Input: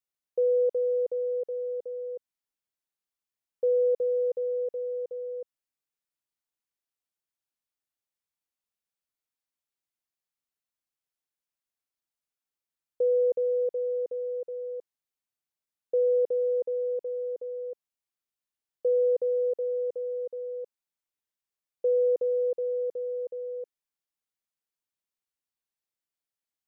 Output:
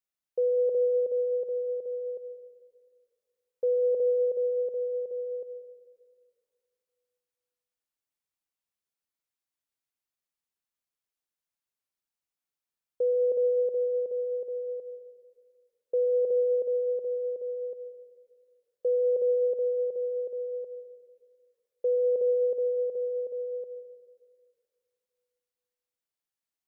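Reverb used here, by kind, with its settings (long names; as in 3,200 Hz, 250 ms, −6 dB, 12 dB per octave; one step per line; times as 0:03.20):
dense smooth reverb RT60 2.2 s, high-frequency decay 0.45×, pre-delay 95 ms, DRR 9.5 dB
level −1.5 dB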